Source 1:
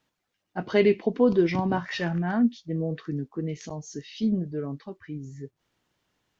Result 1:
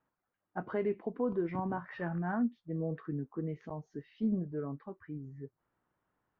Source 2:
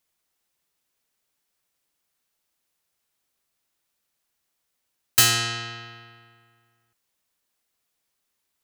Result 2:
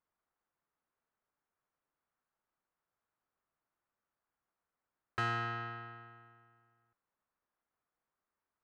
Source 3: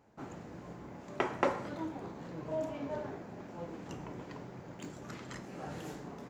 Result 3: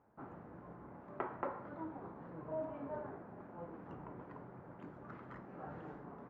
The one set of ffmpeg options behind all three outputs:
-af "lowpass=f=1300:t=q:w=1.6,alimiter=limit=0.141:level=0:latency=1:release=460,volume=0.473"

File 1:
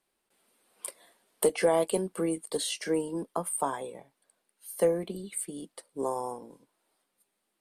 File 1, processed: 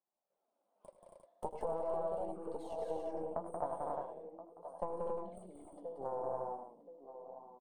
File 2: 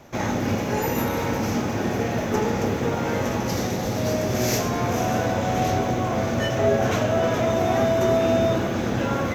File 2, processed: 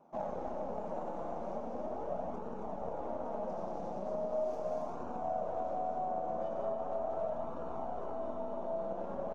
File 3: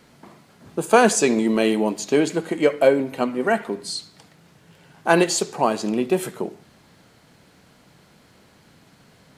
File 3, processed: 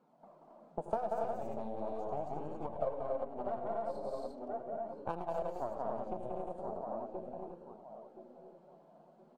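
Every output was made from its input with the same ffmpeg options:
-filter_complex "[0:a]equalizer=f=2700:w=1.2:g=3.5,asplit=2[s0][s1];[s1]adelay=1025,lowpass=f=1200:p=1,volume=0.282,asplit=2[s2][s3];[s3]adelay=1025,lowpass=f=1200:p=1,volume=0.33,asplit=2[s4][s5];[s5]adelay=1025,lowpass=f=1200:p=1,volume=0.33,asplit=2[s6][s7];[s7]adelay=1025,lowpass=f=1200:p=1,volume=0.33[s8];[s2][s4][s6][s8]amix=inputs=4:normalize=0[s9];[s0][s9]amix=inputs=2:normalize=0,afftfilt=real='re*between(b*sr/4096,140,10000)':imag='im*between(b*sr/4096,140,10000)':win_size=4096:overlap=0.75,aeval=exprs='0.944*(cos(1*acos(clip(val(0)/0.944,-1,1)))-cos(1*PI/2))+0.00596*(cos(2*acos(clip(val(0)/0.944,-1,1)))-cos(2*PI/2))+0.237*(cos(3*acos(clip(val(0)/0.944,-1,1)))-cos(3*PI/2))+0.0841*(cos(4*acos(clip(val(0)/0.944,-1,1)))-cos(4*PI/2))+0.0266*(cos(8*acos(clip(val(0)/0.944,-1,1)))-cos(8*PI/2))':c=same,asplit=2[s10][s11];[s11]aecho=0:1:80|100|181|242|274|351:0.178|0.224|0.596|0.473|0.631|0.473[s12];[s10][s12]amix=inputs=2:normalize=0,flanger=delay=0.7:depth=5.2:regen=-41:speed=0.39:shape=sinusoidal,acompressor=threshold=0.0158:ratio=12,firequalizer=gain_entry='entry(400,0);entry(600,13);entry(1900,-17)':delay=0.05:min_phase=1,volume=0.841"

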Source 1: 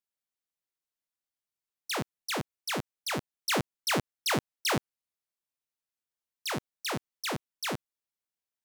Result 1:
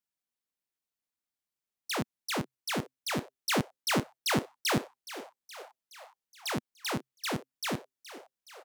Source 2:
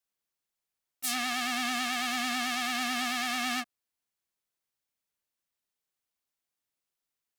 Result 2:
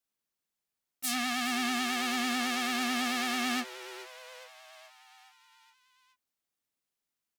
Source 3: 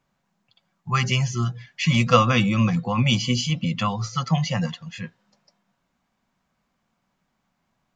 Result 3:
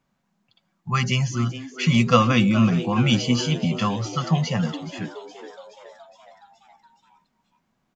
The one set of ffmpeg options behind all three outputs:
-filter_complex "[0:a]equalizer=f=230:t=o:w=0.8:g=5,asplit=7[s0][s1][s2][s3][s4][s5][s6];[s1]adelay=420,afreqshift=130,volume=0.178[s7];[s2]adelay=840,afreqshift=260,volume=0.107[s8];[s3]adelay=1260,afreqshift=390,volume=0.0638[s9];[s4]adelay=1680,afreqshift=520,volume=0.0385[s10];[s5]adelay=2100,afreqshift=650,volume=0.0232[s11];[s6]adelay=2520,afreqshift=780,volume=0.0138[s12];[s0][s7][s8][s9][s10][s11][s12]amix=inputs=7:normalize=0,volume=0.891"

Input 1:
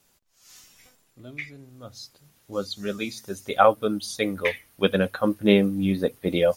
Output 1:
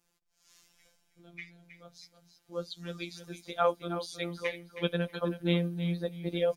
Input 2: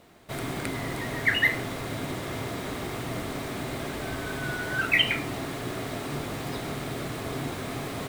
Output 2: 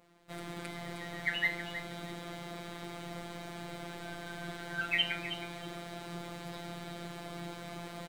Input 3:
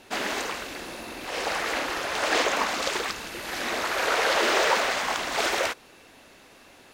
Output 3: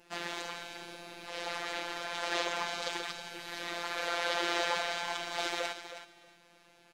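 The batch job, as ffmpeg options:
-af "highshelf=f=11000:g=-8.5,afftfilt=real='hypot(re,im)*cos(PI*b)':imag='0':win_size=1024:overlap=0.75,adynamicequalizer=threshold=0.00355:dfrequency=3700:dqfactor=3:tfrequency=3700:tqfactor=3:attack=5:release=100:ratio=0.375:range=2.5:mode=boostabove:tftype=bell,aecho=1:1:318|636:0.282|0.0507,volume=0.473"

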